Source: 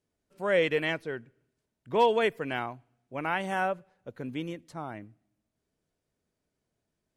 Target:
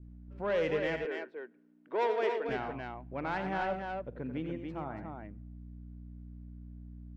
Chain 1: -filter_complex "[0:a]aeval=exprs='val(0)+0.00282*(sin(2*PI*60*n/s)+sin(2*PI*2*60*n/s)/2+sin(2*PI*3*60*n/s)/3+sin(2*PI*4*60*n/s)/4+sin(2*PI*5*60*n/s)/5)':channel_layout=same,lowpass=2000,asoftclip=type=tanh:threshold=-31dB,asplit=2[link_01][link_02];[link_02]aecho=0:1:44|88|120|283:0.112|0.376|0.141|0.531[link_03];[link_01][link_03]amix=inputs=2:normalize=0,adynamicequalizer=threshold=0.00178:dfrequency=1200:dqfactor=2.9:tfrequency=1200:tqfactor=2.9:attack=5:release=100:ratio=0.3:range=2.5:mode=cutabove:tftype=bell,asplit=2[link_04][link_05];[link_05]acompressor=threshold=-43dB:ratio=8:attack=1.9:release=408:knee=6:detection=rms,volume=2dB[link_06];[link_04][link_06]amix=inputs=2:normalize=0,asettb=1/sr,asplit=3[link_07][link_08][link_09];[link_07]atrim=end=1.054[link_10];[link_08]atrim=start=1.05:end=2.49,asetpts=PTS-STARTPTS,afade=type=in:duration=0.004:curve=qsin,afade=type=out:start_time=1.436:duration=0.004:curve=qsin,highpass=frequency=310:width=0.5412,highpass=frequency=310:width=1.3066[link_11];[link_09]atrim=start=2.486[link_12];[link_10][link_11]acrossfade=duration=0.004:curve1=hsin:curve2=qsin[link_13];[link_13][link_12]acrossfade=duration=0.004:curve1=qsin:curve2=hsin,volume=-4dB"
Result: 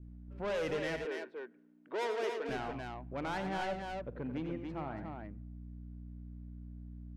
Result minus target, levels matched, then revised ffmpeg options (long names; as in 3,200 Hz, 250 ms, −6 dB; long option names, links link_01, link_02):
soft clipping: distortion +7 dB
-filter_complex "[0:a]aeval=exprs='val(0)+0.00282*(sin(2*PI*60*n/s)+sin(2*PI*2*60*n/s)/2+sin(2*PI*3*60*n/s)/3+sin(2*PI*4*60*n/s)/4+sin(2*PI*5*60*n/s)/5)':channel_layout=same,lowpass=2000,asoftclip=type=tanh:threshold=-22dB,asplit=2[link_01][link_02];[link_02]aecho=0:1:44|88|120|283:0.112|0.376|0.141|0.531[link_03];[link_01][link_03]amix=inputs=2:normalize=0,adynamicequalizer=threshold=0.00178:dfrequency=1200:dqfactor=2.9:tfrequency=1200:tqfactor=2.9:attack=5:release=100:ratio=0.3:range=2.5:mode=cutabove:tftype=bell,asplit=2[link_04][link_05];[link_05]acompressor=threshold=-43dB:ratio=8:attack=1.9:release=408:knee=6:detection=rms,volume=2dB[link_06];[link_04][link_06]amix=inputs=2:normalize=0,asettb=1/sr,asplit=3[link_07][link_08][link_09];[link_07]atrim=end=1.054[link_10];[link_08]atrim=start=1.05:end=2.49,asetpts=PTS-STARTPTS,afade=type=in:duration=0.004:curve=qsin,afade=type=out:start_time=1.436:duration=0.004:curve=qsin,highpass=frequency=310:width=0.5412,highpass=frequency=310:width=1.3066[link_11];[link_09]atrim=start=2.486[link_12];[link_10][link_11]acrossfade=duration=0.004:curve1=hsin:curve2=qsin[link_13];[link_13][link_12]acrossfade=duration=0.004:curve1=qsin:curve2=hsin,volume=-4dB"